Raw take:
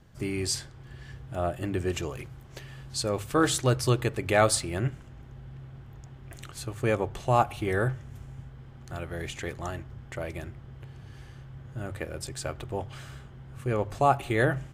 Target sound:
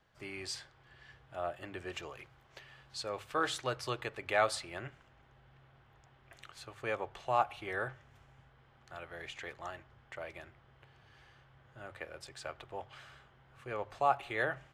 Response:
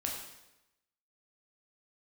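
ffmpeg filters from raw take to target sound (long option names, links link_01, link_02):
-filter_complex "[0:a]acrossover=split=520 4800:gain=0.178 1 0.224[link_01][link_02][link_03];[link_01][link_02][link_03]amix=inputs=3:normalize=0,volume=-5dB"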